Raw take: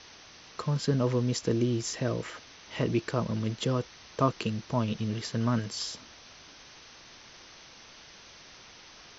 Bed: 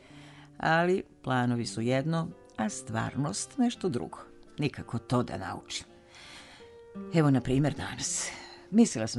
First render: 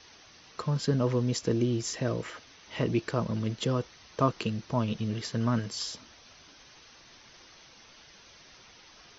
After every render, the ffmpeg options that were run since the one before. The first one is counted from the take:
ffmpeg -i in.wav -af "afftdn=noise_reduction=6:noise_floor=-52" out.wav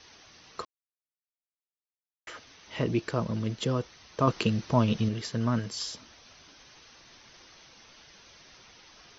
ffmpeg -i in.wav -filter_complex "[0:a]asettb=1/sr,asplit=3[link_01][link_02][link_03];[link_01]atrim=end=4.274[link_04];[link_02]atrim=start=4.27:end=5.09,asetpts=PTS-STARTPTS,afade=type=in:duration=0.004:curve=qsin,afade=type=out:start_time=0.816:duration=0.004:curve=qsin,acontrast=25[link_05];[link_03]atrim=start=5.086[link_06];[link_04][link_05]acrossfade=duration=0.004:curve1=hsin:curve2=qsin[link_07];[link_07][link_06]acrossfade=duration=0.004:curve1=qsin:curve2=hsin,asplit=3[link_08][link_09][link_10];[link_08]atrim=end=0.65,asetpts=PTS-STARTPTS,afade=type=out:start_time=0.646:duration=0.004:curve=hsin[link_11];[link_09]atrim=start=0.65:end=2.27,asetpts=PTS-STARTPTS,volume=0[link_12];[link_10]atrim=start=2.27,asetpts=PTS-STARTPTS,afade=type=in:duration=0.004:curve=hsin[link_13];[link_11][link_12][link_13]concat=n=3:v=0:a=1" out.wav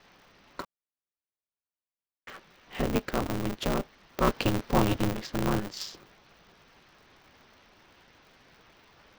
ffmpeg -i in.wav -af "adynamicsmooth=sensitivity=7:basefreq=2600,aeval=exprs='val(0)*sgn(sin(2*PI*100*n/s))':channel_layout=same" out.wav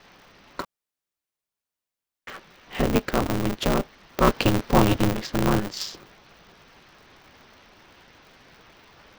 ffmpeg -i in.wav -af "volume=6dB" out.wav

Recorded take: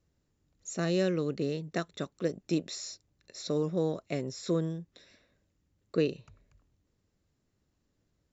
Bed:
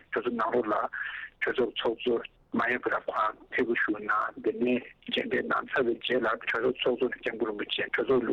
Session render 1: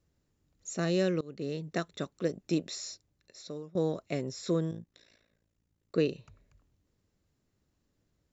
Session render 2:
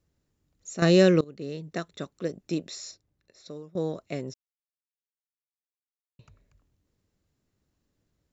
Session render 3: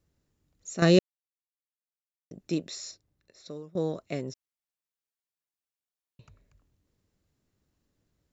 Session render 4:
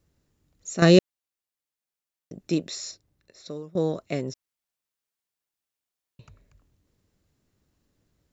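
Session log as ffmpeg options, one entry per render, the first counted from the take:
ffmpeg -i in.wav -filter_complex "[0:a]asettb=1/sr,asplit=3[link_01][link_02][link_03];[link_01]atrim=end=4.714[link_04];[link_02]atrim=start=4.71:end=5.95,asetpts=PTS-STARTPTS,afade=type=in:duration=0.004:curve=qsin,afade=type=out:start_time=1.236:duration=0.004:curve=qsin,tremolo=f=56:d=0.889[link_05];[link_03]atrim=start=5.946[link_06];[link_04][link_05]acrossfade=duration=0.004:curve1=hsin:curve2=qsin[link_07];[link_07][link_06]acrossfade=duration=0.004:curve1=qsin:curve2=hsin,asplit=3[link_08][link_09][link_10];[link_08]atrim=end=1.21,asetpts=PTS-STARTPTS,afade=type=out:start_time=1.206:duration=0.004:curve=hsin:silence=0.0668344[link_11];[link_09]atrim=start=1.21:end=3.75,asetpts=PTS-STARTPTS,afade=type=in:duration=0.41:silence=0.0668344,afade=type=out:start_time=1.7:duration=0.84:silence=0.0749894[link_12];[link_10]atrim=start=3.75,asetpts=PTS-STARTPTS,afade=type=in:duration=0.004:curve=hsin:silence=0.0749894[link_13];[link_11][link_12][link_13]concat=n=3:v=0:a=1" out.wav
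ffmpeg -i in.wav -filter_complex "[0:a]asettb=1/sr,asplit=3[link_01][link_02][link_03];[link_01]atrim=end=2.914[link_04];[link_02]atrim=start=2.91:end=3.46,asetpts=PTS-STARTPTS,afade=type=in:duration=0.004:curve=qsin,afade=type=out:start_time=0.546:duration=0.004:curve=qsin,highshelf=frequency=3200:gain=-8.5[link_05];[link_03]atrim=start=3.456[link_06];[link_04][link_05]acrossfade=duration=0.004:curve1=hsin:curve2=qsin[link_07];[link_07][link_06]acrossfade=duration=0.004:curve1=qsin:curve2=hsin,asplit=5[link_08][link_09][link_10][link_11][link_12];[link_08]atrim=end=0.822[link_13];[link_09]atrim=start=0.818:end=1.242,asetpts=PTS-STARTPTS,volume=10dB[link_14];[link_10]atrim=start=1.238:end=4.34,asetpts=PTS-STARTPTS,afade=type=out:start_time=3.098:duration=0.004:curve=hsin[link_15];[link_11]atrim=start=4.34:end=6.19,asetpts=PTS-STARTPTS,volume=0[link_16];[link_12]atrim=start=6.19,asetpts=PTS-STARTPTS,afade=type=in:duration=0.004:curve=hsin[link_17];[link_13][link_14]acrossfade=duration=0.004:curve1=hsin:curve2=hsin[link_18];[link_15][link_16][link_17]concat=n=3:v=0:a=1[link_19];[link_18][link_19]acrossfade=duration=0.004:curve1=hsin:curve2=hsin" out.wav
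ffmpeg -i in.wav -filter_complex "[0:a]asplit=3[link_01][link_02][link_03];[link_01]atrim=end=0.99,asetpts=PTS-STARTPTS,afade=type=out:start_time=0.986:duration=0.004:curve=hsin[link_04];[link_02]atrim=start=0.99:end=2.31,asetpts=PTS-STARTPTS,volume=0[link_05];[link_03]atrim=start=2.31,asetpts=PTS-STARTPTS,afade=type=in:duration=0.004:curve=hsin[link_06];[link_04][link_05][link_06]concat=n=3:v=0:a=1" out.wav
ffmpeg -i in.wav -af "volume=4.5dB" out.wav

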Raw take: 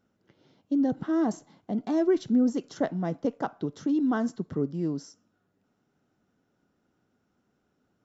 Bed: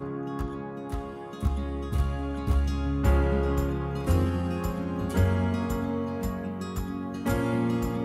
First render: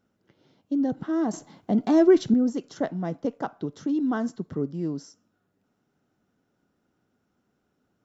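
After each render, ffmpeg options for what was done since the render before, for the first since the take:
ffmpeg -i in.wav -filter_complex "[0:a]asettb=1/sr,asplit=3[link_01][link_02][link_03];[link_01]atrim=end=1.334[link_04];[link_02]atrim=start=1.33:end=2.34,asetpts=PTS-STARTPTS,afade=type=in:duration=0.004:curve=qsin,afade=type=out:start_time=1.006:duration=0.004:curve=qsin,acontrast=84[link_05];[link_03]atrim=start=2.336[link_06];[link_04][link_05]acrossfade=duration=0.004:curve1=hsin:curve2=qsin[link_07];[link_07][link_06]acrossfade=duration=0.004:curve1=qsin:curve2=hsin" out.wav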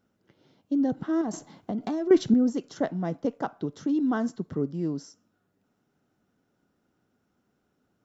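ffmpeg -i in.wav -filter_complex "[0:a]asettb=1/sr,asplit=3[link_01][link_02][link_03];[link_01]atrim=end=1.214[link_04];[link_02]atrim=start=1.21:end=2.11,asetpts=PTS-STARTPTS,afade=type=in:duration=0.004:curve=qsin,afade=type=out:start_time=0.896:duration=0.004:curve=qsin,acompressor=threshold=-26dB:ratio=10:attack=3.2:release=140:knee=1:detection=peak[link_05];[link_03]atrim=start=2.106[link_06];[link_04][link_05]acrossfade=duration=0.004:curve1=hsin:curve2=qsin[link_07];[link_07][link_06]acrossfade=duration=0.004:curve1=qsin:curve2=hsin" out.wav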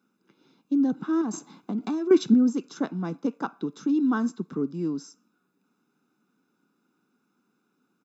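ffmpeg -i in.wav -af "highpass=frequency=190:width=0.5412,highpass=frequency=190:width=1.3066,aecho=1:1:0.8:0.7" out.wav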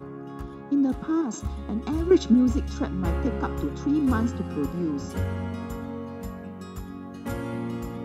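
ffmpeg -i in.wav -i bed.wav -filter_complex "[1:a]volume=-5dB[link_01];[0:a][link_01]amix=inputs=2:normalize=0" out.wav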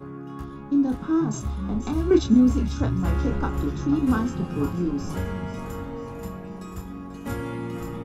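ffmpeg -i in.wav -filter_complex "[0:a]asplit=2[link_01][link_02];[link_02]adelay=28,volume=-5.5dB[link_03];[link_01][link_03]amix=inputs=2:normalize=0,asplit=6[link_04][link_05][link_06][link_07][link_08][link_09];[link_05]adelay=489,afreqshift=-130,volume=-11.5dB[link_10];[link_06]adelay=978,afreqshift=-260,volume=-17.3dB[link_11];[link_07]adelay=1467,afreqshift=-390,volume=-23.2dB[link_12];[link_08]adelay=1956,afreqshift=-520,volume=-29dB[link_13];[link_09]adelay=2445,afreqshift=-650,volume=-34.9dB[link_14];[link_04][link_10][link_11][link_12][link_13][link_14]amix=inputs=6:normalize=0" out.wav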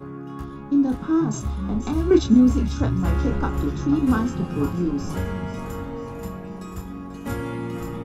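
ffmpeg -i in.wav -af "volume=2dB" out.wav

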